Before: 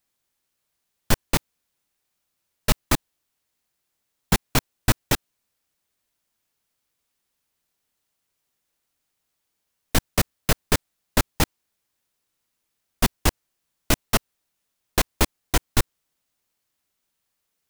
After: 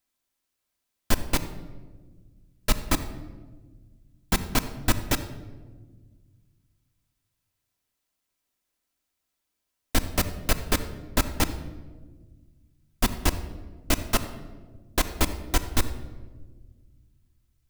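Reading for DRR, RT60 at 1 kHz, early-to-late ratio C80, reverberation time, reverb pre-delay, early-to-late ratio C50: 7.0 dB, 1.1 s, 13.5 dB, 1.5 s, 3 ms, 12.0 dB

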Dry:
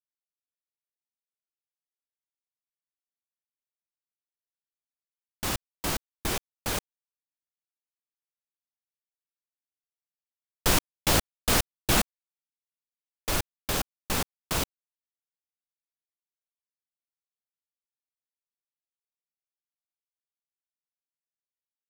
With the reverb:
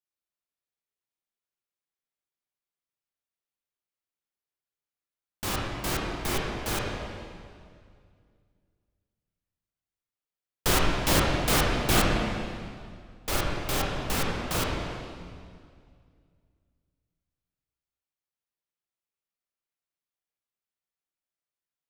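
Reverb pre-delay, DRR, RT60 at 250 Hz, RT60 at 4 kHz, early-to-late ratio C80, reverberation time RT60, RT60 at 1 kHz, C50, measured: 18 ms, -3.5 dB, 2.5 s, 1.9 s, 1.0 dB, 2.1 s, 2.1 s, -0.5 dB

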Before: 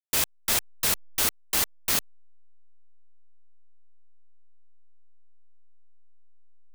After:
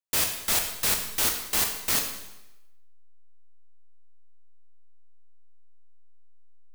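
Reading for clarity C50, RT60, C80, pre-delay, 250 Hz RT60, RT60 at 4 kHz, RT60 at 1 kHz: 6.0 dB, 0.95 s, 8.5 dB, 6 ms, 0.95 s, 0.90 s, 0.95 s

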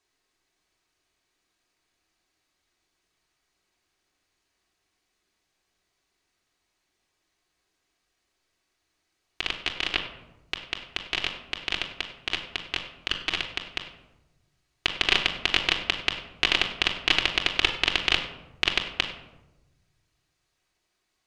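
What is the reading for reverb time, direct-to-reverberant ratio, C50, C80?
1.0 s, -1.5 dB, 8.5 dB, 10.5 dB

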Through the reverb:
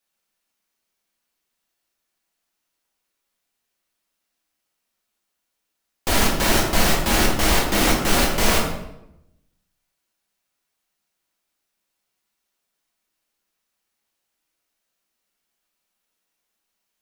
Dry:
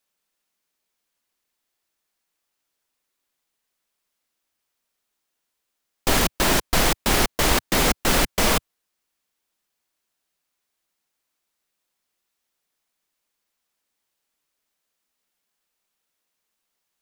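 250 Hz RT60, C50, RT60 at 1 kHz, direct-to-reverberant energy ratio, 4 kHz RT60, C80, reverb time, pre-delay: 1.0 s, 4.0 dB, 0.80 s, -2.5 dB, 0.60 s, 6.5 dB, 0.85 s, 6 ms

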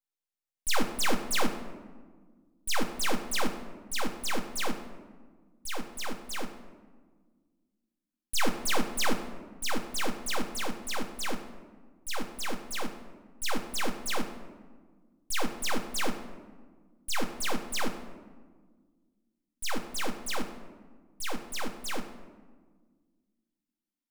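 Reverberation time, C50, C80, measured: 1.5 s, 9.0 dB, 10.5 dB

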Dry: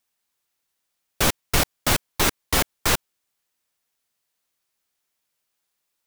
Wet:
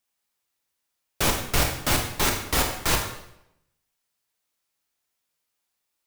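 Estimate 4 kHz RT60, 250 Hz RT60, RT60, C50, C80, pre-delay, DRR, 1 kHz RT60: 0.70 s, 0.85 s, 0.80 s, 5.5 dB, 8.5 dB, 20 ms, 2.0 dB, 0.80 s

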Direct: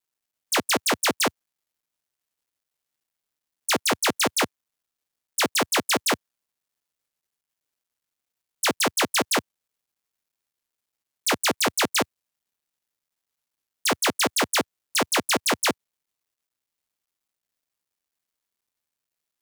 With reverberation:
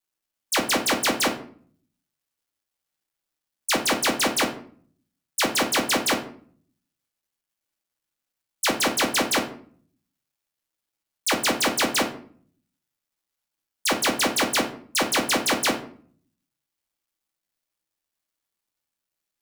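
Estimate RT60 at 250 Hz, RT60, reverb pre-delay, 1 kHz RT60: 0.75 s, 0.50 s, 3 ms, 0.50 s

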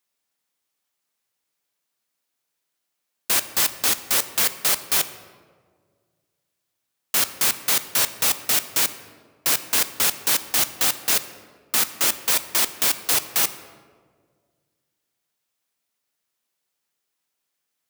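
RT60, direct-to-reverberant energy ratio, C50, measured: 1.8 s, 11.0 dB, 13.0 dB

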